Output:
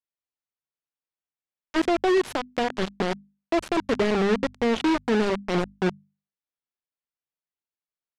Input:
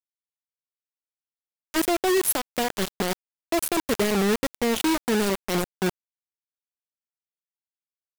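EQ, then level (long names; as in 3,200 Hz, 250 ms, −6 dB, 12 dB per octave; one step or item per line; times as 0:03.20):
low-pass filter 3,900 Hz 6 dB per octave
high-frequency loss of the air 89 metres
mains-hum notches 50/100/150/200/250 Hz
+1.5 dB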